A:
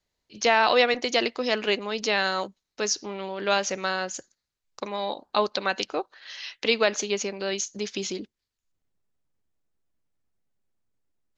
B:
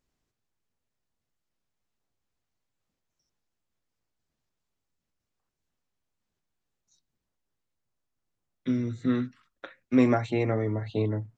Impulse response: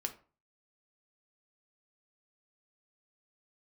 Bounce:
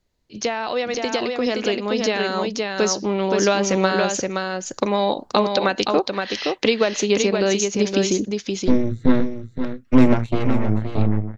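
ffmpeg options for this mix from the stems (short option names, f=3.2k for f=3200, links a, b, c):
-filter_complex "[0:a]acompressor=threshold=-26dB:ratio=6,volume=2dB,asplit=2[a][b];[b]volume=-4.5dB[c];[1:a]acrossover=split=290|3000[d][e][f];[e]acompressor=threshold=-26dB:ratio=6[g];[d][g][f]amix=inputs=3:normalize=0,aeval=exprs='0.237*(cos(1*acos(clip(val(0)/0.237,-1,1)))-cos(1*PI/2))+0.0668*(cos(6*acos(clip(val(0)/0.237,-1,1)))-cos(6*PI/2))+0.00944*(cos(7*acos(clip(val(0)/0.237,-1,1)))-cos(7*PI/2))':c=same,volume=-2dB,asplit=2[h][i];[i]volume=-9dB[j];[c][j]amix=inputs=2:normalize=0,aecho=0:1:521:1[k];[a][h][k]amix=inputs=3:normalize=0,lowshelf=f=490:g=9.5,dynaudnorm=f=750:g=7:m=11.5dB"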